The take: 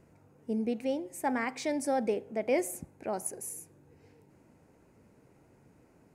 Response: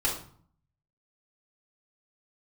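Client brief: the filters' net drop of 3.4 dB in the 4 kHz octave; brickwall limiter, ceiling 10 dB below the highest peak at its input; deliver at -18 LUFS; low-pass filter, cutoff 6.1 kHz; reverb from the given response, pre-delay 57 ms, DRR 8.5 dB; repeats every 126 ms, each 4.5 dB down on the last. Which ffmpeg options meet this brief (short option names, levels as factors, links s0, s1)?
-filter_complex "[0:a]lowpass=6100,equalizer=f=4000:t=o:g=-3.5,alimiter=level_in=1.41:limit=0.0631:level=0:latency=1,volume=0.708,aecho=1:1:126|252|378|504|630|756|882|1008|1134:0.596|0.357|0.214|0.129|0.0772|0.0463|0.0278|0.0167|0.01,asplit=2[s0][s1];[1:a]atrim=start_sample=2205,adelay=57[s2];[s1][s2]afir=irnorm=-1:irlink=0,volume=0.133[s3];[s0][s3]amix=inputs=2:normalize=0,volume=7.5"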